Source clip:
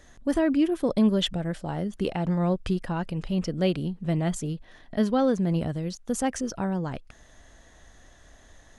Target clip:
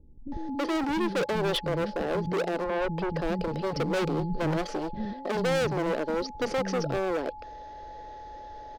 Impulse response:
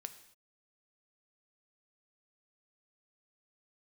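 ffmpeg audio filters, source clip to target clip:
-filter_complex "[0:a]asettb=1/sr,asplit=3[link_01][link_02][link_03];[link_01]atrim=end=0.964[link_04];[link_02]atrim=start=0.96:end=1.55,asetpts=PTS-STARTPTS,afade=type=in:duration=0.004:curve=qsin,afade=type=out:start_time=0.586:duration=0.004:curve=qsin,highpass=frequency=62:width=0.5412,highpass=frequency=62:width=1.3066[link_05];[link_03]atrim=start=1.546[link_06];[link_04][link_05]acrossfade=duration=0.004:curve1=hsin:curve2=qsin[link_07];[link_07][link_06]acrossfade=duration=0.004:curve1=qsin:curve2=hsin,asettb=1/sr,asplit=3[link_08][link_09][link_10];[link_08]atrim=end=4.184[link_11];[link_09]atrim=start=4.18:end=5.05,asetpts=PTS-STARTPTS,afade=type=in:duration=0.004:curve=qsin,afade=type=out:start_time=0.866:duration=0.004:curve=qsin,aecho=1:1:5.5:0.97,atrim=end_sample=38367[link_12];[link_10]atrim=start=5.046[link_13];[link_11][link_12]acrossfade=duration=0.004:curve1=hsin:curve2=qsin[link_14];[link_14][link_13]acrossfade=duration=0.004:curve1=qsin:curve2=hsin,asplit=2[link_15][link_16];[link_16]acrusher=samples=10:mix=1:aa=0.000001,volume=-12dB[link_17];[link_15][link_17]amix=inputs=2:normalize=0,firequalizer=gain_entry='entry(210,0);entry(320,9);entry(500,15);entry(870,-6);entry(1300,-1);entry(3200,-1);entry(4800,6);entry(7500,-24)':delay=0.05:min_phase=1,volume=24.5dB,asoftclip=hard,volume=-24.5dB,aeval=exprs='val(0)+0.00891*sin(2*PI*850*n/s)':channel_layout=same,asettb=1/sr,asplit=3[link_18][link_19][link_20];[link_18]atrim=end=2.324[link_21];[link_19]atrim=start=2.32:end=2.81,asetpts=PTS-STARTPTS,afade=type=in:duration=0.004:curve=qsin,afade=type=out:start_time=0.486:duration=0.004:curve=qsin,bass=frequency=250:gain=-11,treble=frequency=4000:gain=-15[link_22];[link_20]atrim=start=2.806[link_23];[link_21][link_22]acrossfade=duration=0.004:curve1=hsin:curve2=qsin[link_24];[link_24][link_23]acrossfade=duration=0.004:curve1=qsin:curve2=hsin,acrossover=split=250[link_25][link_26];[link_26]adelay=320[link_27];[link_25][link_27]amix=inputs=2:normalize=0"

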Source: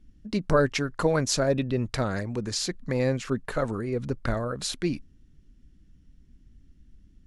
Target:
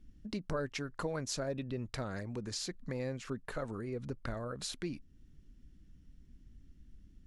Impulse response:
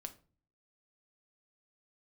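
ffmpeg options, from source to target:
-af "acompressor=threshold=-40dB:ratio=2,volume=-2.5dB"

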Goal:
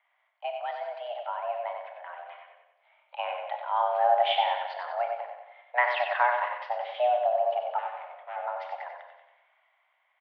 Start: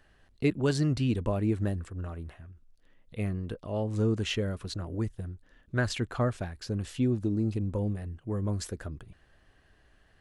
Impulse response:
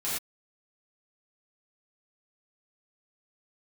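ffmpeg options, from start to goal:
-filter_complex "[0:a]dynaudnorm=framelen=570:gausssize=7:maxgain=14dB,asettb=1/sr,asplit=3[link_01][link_02][link_03];[link_01]atrim=end=7.784[link_04];[link_02]atrim=start=7.78:end=8.36,asetpts=PTS-STARTPTS,afade=type=in:duration=0.004:curve=qsin,afade=type=out:start_time=0.576:duration=0.004:curve=qsin,asoftclip=type=hard:threshold=-26dB[link_05];[link_03]atrim=start=8.356[link_06];[link_04][link_05]acrossfade=duration=0.004:curve1=hsin:curve2=qsin[link_07];[link_07][link_06]acrossfade=duration=0.004:curve1=qsin:curve2=hsin,aecho=1:1:93|186|279|372|465|558:0.501|0.261|0.136|0.0705|0.0366|0.0191,asplit=2[link_08][link_09];[1:a]atrim=start_sample=2205,afade=type=out:start_time=0.14:duration=0.01,atrim=end_sample=6615,adelay=31[link_10];[link_09][link_10]afir=irnorm=-1:irlink=0,volume=-12dB[link_11];[link_08][link_11]amix=inputs=2:normalize=0,highpass=frequency=280:width_type=q:width=0.5412,highpass=frequency=280:width_type=q:width=1.307,lowpass=frequency=2800:width_type=q:width=0.5176,lowpass=frequency=2800:width_type=q:width=0.7071,lowpass=frequency=2800:width_type=q:width=1.932,afreqshift=360,volume=-6.5dB"

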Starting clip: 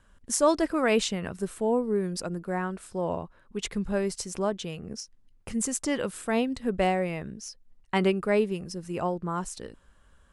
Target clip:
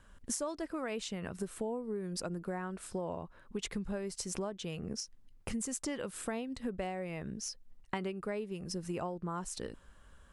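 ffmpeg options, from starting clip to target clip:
ffmpeg -i in.wav -af "acompressor=threshold=-35dB:ratio=12,volume=1dB" out.wav

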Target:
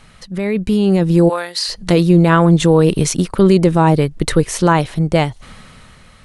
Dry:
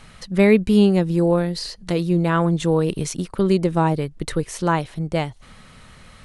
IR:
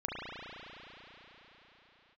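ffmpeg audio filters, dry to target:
-filter_complex "[0:a]asplit=3[link_01][link_02][link_03];[link_01]afade=type=out:start_time=1.28:duration=0.02[link_04];[link_02]highpass=960,afade=type=in:start_time=1.28:duration=0.02,afade=type=out:start_time=1.68:duration=0.02[link_05];[link_03]afade=type=in:start_time=1.68:duration=0.02[link_06];[link_04][link_05][link_06]amix=inputs=3:normalize=0,alimiter=limit=-11.5dB:level=0:latency=1:release=12,dynaudnorm=framelen=250:gausssize=7:maxgain=13dB"

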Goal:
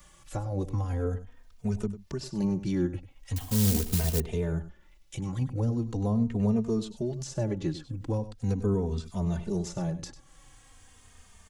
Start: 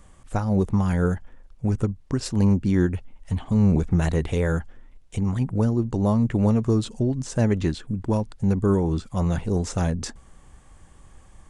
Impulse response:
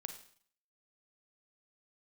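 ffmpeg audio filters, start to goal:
-filter_complex "[0:a]equalizer=frequency=9000:width_type=o:width=0.77:gain=-13,acrossover=split=160|800[link_01][link_02][link_03];[link_03]acompressor=threshold=-50dB:ratio=10[link_04];[link_01][link_02][link_04]amix=inputs=3:normalize=0,aecho=1:1:98:0.2,asettb=1/sr,asplit=3[link_05][link_06][link_07];[link_05]atrim=end=3.364[link_08];[link_06]atrim=start=3.36:end=4.2,asetpts=PTS-STARTPTS,afade=type=in:duration=0.004:curve=qsin,afade=type=out:start_time=0.836:duration=0.004:curve=qsin,acrusher=bits=6:mode=log:mix=0:aa=0.000001[link_09];[link_07]atrim=start=4.196[link_10];[link_08][link_09]acrossfade=duration=0.004:curve1=hsin:curve2=qsin[link_11];[link_11][link_10]acrossfade=duration=0.004:curve1=qsin:curve2=hsin,crystalizer=i=9:c=0,asplit=2[link_12][link_13];[link_13]adelay=3,afreqshift=-0.41[link_14];[link_12][link_14]amix=inputs=2:normalize=1,volume=-4.5dB"

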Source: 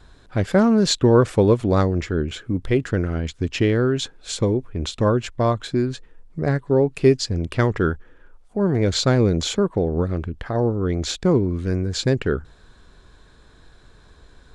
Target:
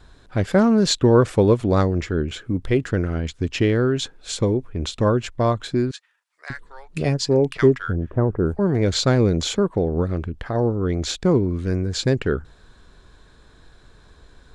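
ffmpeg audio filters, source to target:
ffmpeg -i in.wav -filter_complex "[0:a]asettb=1/sr,asplit=3[link_01][link_02][link_03];[link_01]atrim=end=5.914[link_04];[link_02]atrim=start=5.91:end=8.59,asetpts=PTS-STARTPTS,afade=type=in:duration=0.004:curve=qsin,afade=type=out:start_time=2.676:duration=0.004:curve=qsin,acrossover=split=1100[link_05][link_06];[link_05]adelay=590[link_07];[link_07][link_06]amix=inputs=2:normalize=0,atrim=end_sample=118188[link_08];[link_03]atrim=start=8.586[link_09];[link_04][link_08]acrossfade=duration=0.004:curve1=hsin:curve2=qsin[link_10];[link_10][link_09]acrossfade=duration=0.004:curve1=qsin:curve2=hsin" out.wav

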